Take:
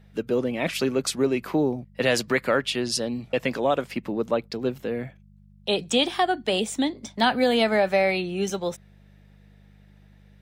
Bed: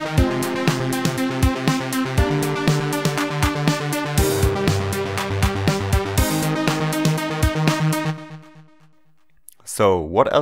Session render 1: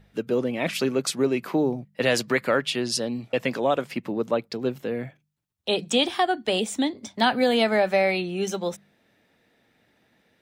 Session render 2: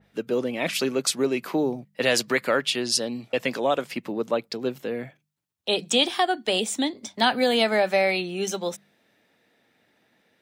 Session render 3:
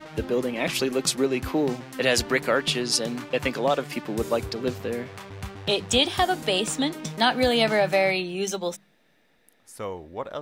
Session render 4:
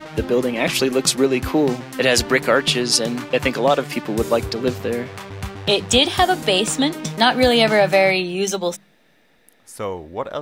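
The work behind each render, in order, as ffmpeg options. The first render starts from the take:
-af "bandreject=f=50:t=h:w=4,bandreject=f=100:t=h:w=4,bandreject=f=150:t=h:w=4,bandreject=f=200:t=h:w=4"
-af "highpass=f=190:p=1,adynamicequalizer=threshold=0.0126:dfrequency=2800:dqfactor=0.7:tfrequency=2800:tqfactor=0.7:attack=5:release=100:ratio=0.375:range=2:mode=boostabove:tftype=highshelf"
-filter_complex "[1:a]volume=-17dB[a];[0:a][a]amix=inputs=2:normalize=0"
-af "volume=6.5dB,alimiter=limit=-3dB:level=0:latency=1"

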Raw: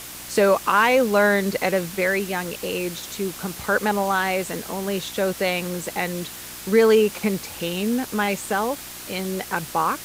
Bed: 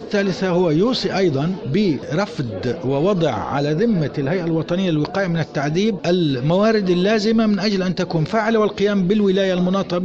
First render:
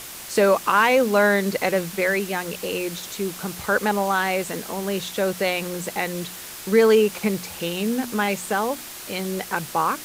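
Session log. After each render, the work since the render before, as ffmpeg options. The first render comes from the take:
-af "bandreject=f=60:t=h:w=4,bandreject=f=120:t=h:w=4,bandreject=f=180:t=h:w=4,bandreject=f=240:t=h:w=4,bandreject=f=300:t=h:w=4"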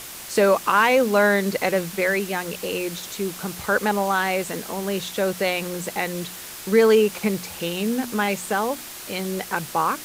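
-af anull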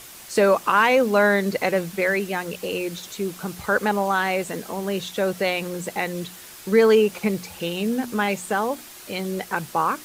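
-af "afftdn=nr=6:nf=-37"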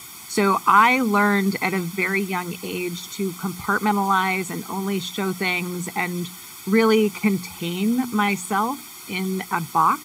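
-af "highpass=97,aecho=1:1:0.9:0.95"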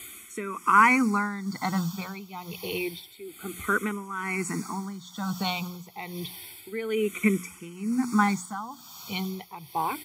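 -filter_complex "[0:a]tremolo=f=1.1:d=0.8,asplit=2[a][b];[b]afreqshift=-0.29[c];[a][c]amix=inputs=2:normalize=1"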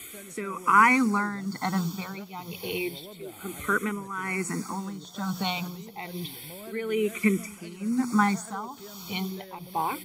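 -filter_complex "[1:a]volume=-28.5dB[a];[0:a][a]amix=inputs=2:normalize=0"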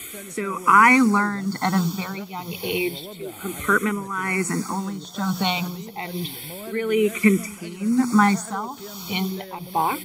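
-af "volume=6.5dB,alimiter=limit=-3dB:level=0:latency=1"

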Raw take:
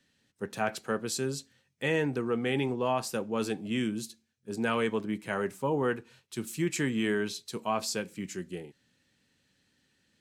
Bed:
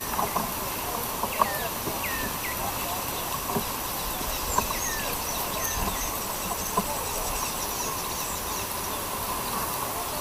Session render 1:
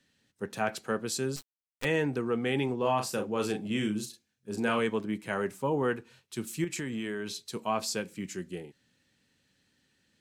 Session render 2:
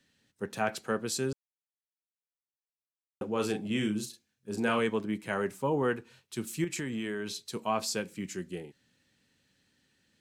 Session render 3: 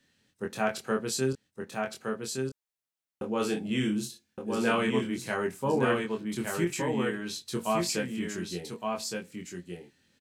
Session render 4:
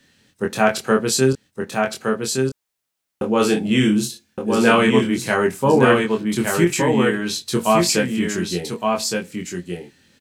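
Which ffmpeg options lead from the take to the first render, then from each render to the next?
-filter_complex "[0:a]asettb=1/sr,asplit=3[a][b][c];[a]atrim=end=1.364[d];[b]atrim=start=1.36:end=1.85,asetpts=PTS-STARTPTS,afade=t=in:d=0.004:c=qsin,afade=t=out:st=0.486:d=0.004:c=qsin,acrusher=bits=5:dc=4:mix=0:aa=0.000001[e];[c]atrim=start=1.846[f];[d][e]acrossfade=d=0.004:c1=hsin:c2=qsin[g];[g][f]acrossfade=d=0.004:c1=qsin:c2=hsin,asettb=1/sr,asplit=3[h][i][j];[h]atrim=end=2.784[k];[i]atrim=start=2.78:end=4.79,asetpts=PTS-STARTPTS,afade=t=in:d=0.004:c=qsin,afade=t=out:st=2.006:d=0.004:c=qsin,asplit=2[l][m];[m]adelay=38,volume=-6dB[n];[l][n]amix=inputs=2:normalize=0,atrim=end_sample=88641[o];[j]atrim=start=4.786[p];[k][o]acrossfade=d=0.004:c1=hsin:c2=qsin[q];[q][p]acrossfade=d=0.004:c1=qsin:c2=hsin,asettb=1/sr,asplit=3[r][s][t];[r]atrim=end=6.644[u];[s]atrim=start=6.64:end=7.42,asetpts=PTS-STARTPTS,afade=t=in:d=0.004:c=qsin,afade=t=out:st=0.776:d=0.004:c=qsin,acompressor=threshold=-31dB:ratio=6:attack=3.2:release=140:knee=1:detection=peak[v];[t]atrim=start=7.416[w];[u][v]acrossfade=d=0.004:c1=hsin:c2=qsin[x];[x][w]acrossfade=d=0.004:c1=qsin:c2=hsin"
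-filter_complex "[0:a]asplit=3[a][b][c];[a]atrim=end=1.33,asetpts=PTS-STARTPTS,afade=t=out:st=1.326:d=0.004:c=hsin[d];[b]atrim=start=1.33:end=3.21,asetpts=PTS-STARTPTS,volume=0[e];[c]atrim=start=3.21,asetpts=PTS-STARTPTS,afade=t=in:d=0.004:c=hsin[f];[d][e][f]concat=n=3:v=0:a=1"
-filter_complex "[0:a]asplit=2[a][b];[b]adelay=23,volume=-3.5dB[c];[a][c]amix=inputs=2:normalize=0,asplit=2[d][e];[e]aecho=0:1:1166:0.631[f];[d][f]amix=inputs=2:normalize=0"
-af "volume=12dB"

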